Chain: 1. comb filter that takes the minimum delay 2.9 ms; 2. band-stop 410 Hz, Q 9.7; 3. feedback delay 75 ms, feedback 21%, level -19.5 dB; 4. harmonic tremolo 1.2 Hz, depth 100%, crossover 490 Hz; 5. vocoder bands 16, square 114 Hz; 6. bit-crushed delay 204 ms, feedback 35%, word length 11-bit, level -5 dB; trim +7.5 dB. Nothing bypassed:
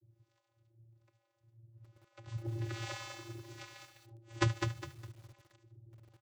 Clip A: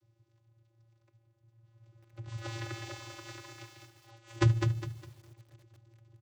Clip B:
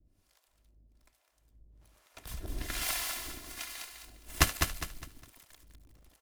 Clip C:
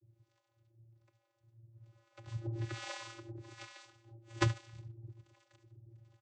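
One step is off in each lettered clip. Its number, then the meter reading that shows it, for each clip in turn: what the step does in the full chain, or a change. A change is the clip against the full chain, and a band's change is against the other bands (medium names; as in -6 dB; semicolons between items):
4, crest factor change -3.0 dB; 5, 8 kHz band +13.5 dB; 6, momentary loudness spread change +2 LU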